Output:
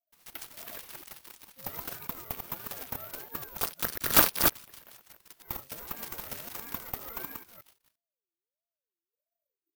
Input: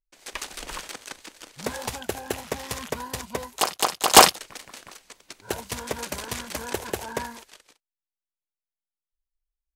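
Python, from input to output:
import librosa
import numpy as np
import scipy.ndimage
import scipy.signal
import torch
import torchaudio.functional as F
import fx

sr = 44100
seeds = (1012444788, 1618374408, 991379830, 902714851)

y = fx.reverse_delay(x, sr, ms=173, wet_db=-4)
y = (np.kron(scipy.signal.resample_poly(y, 1, 3), np.eye(3)[0]) * 3)[:len(y)]
y = fx.ring_lfo(y, sr, carrier_hz=510.0, swing_pct=35, hz=1.5)
y = F.gain(torch.from_numpy(y), -10.0).numpy()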